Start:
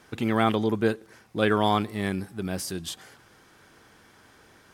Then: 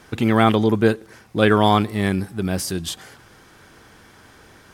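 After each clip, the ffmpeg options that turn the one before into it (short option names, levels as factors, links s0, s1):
-af "lowshelf=f=98:g=6.5,volume=2.11"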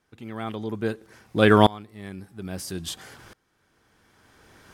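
-af "aeval=exprs='val(0)*pow(10,-26*if(lt(mod(-0.6*n/s,1),2*abs(-0.6)/1000),1-mod(-0.6*n/s,1)/(2*abs(-0.6)/1000),(mod(-0.6*n/s,1)-2*abs(-0.6)/1000)/(1-2*abs(-0.6)/1000))/20)':c=same,volume=1.26"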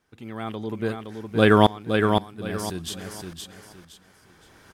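-af "aecho=1:1:516|1032|1548|2064:0.562|0.163|0.0473|0.0137"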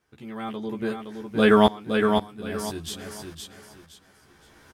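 -filter_complex "[0:a]asplit=2[s0][s1];[s1]adelay=14,volume=0.75[s2];[s0][s2]amix=inputs=2:normalize=0,volume=0.708"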